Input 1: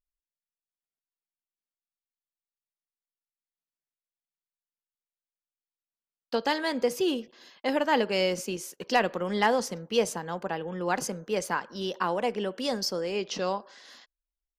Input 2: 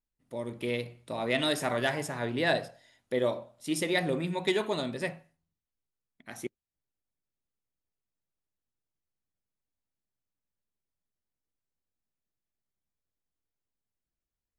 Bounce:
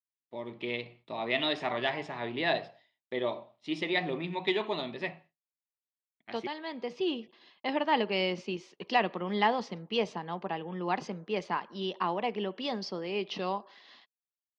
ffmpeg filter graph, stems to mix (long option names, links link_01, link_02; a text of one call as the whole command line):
ffmpeg -i stem1.wav -i stem2.wav -filter_complex "[0:a]volume=0dB[link_01];[1:a]lowshelf=frequency=180:gain=-9.5,volume=2dB,asplit=2[link_02][link_03];[link_03]apad=whole_len=643268[link_04];[link_01][link_04]sidechaincompress=threshold=-40dB:ratio=8:attack=30:release=1160[link_05];[link_05][link_02]amix=inputs=2:normalize=0,agate=range=-33dB:threshold=-49dB:ratio=3:detection=peak,highpass=110,equalizer=frequency=140:width_type=q:width=4:gain=-4,equalizer=frequency=260:width_type=q:width=4:gain=-5,equalizer=frequency=520:width_type=q:width=4:gain=-9,equalizer=frequency=1500:width_type=q:width=4:gain=-10,lowpass=frequency=3900:width=0.5412,lowpass=frequency=3900:width=1.3066" out.wav